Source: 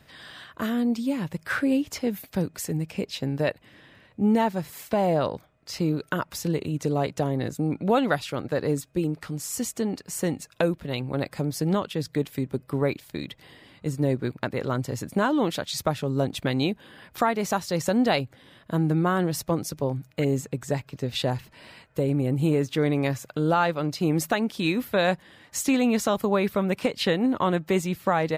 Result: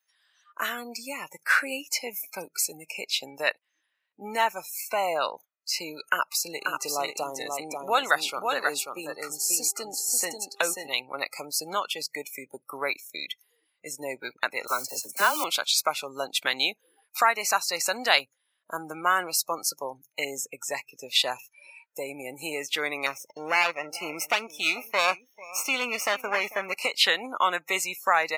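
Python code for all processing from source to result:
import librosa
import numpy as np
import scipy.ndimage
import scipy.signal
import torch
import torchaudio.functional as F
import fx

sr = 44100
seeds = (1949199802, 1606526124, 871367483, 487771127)

y = fx.dynamic_eq(x, sr, hz=2300.0, q=2.4, threshold_db=-47.0, ratio=4.0, max_db=-4, at=(6.55, 10.91), fade=0.02)
y = fx.dmg_buzz(y, sr, base_hz=400.0, harmonics=3, level_db=-51.0, tilt_db=-5, odd_only=False, at=(6.55, 10.91), fade=0.02)
y = fx.echo_single(y, sr, ms=538, db=-4.5, at=(6.55, 10.91), fade=0.02)
y = fx.chain(y, sr, fx.mod_noise(seeds[0], snr_db=18),
    fx.dispersion(late='lows', ms=41.0, hz=760.0), at=(14.67, 15.44))
y = fx.chain(y, sr, fx.lower_of_two(delay_ms=0.34),
    fx.high_shelf(hz=4900.0, db=-8.0),
    fx.echo_single(ms=444, db=-18.5), at=(23.06, 26.75))
y = fx.noise_reduce_blind(y, sr, reduce_db=30)
y = scipy.signal.sosfilt(scipy.signal.butter(2, 1200.0, 'highpass', fs=sr, output='sos'), y)
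y = y * 10.0 ** (8.0 / 20.0)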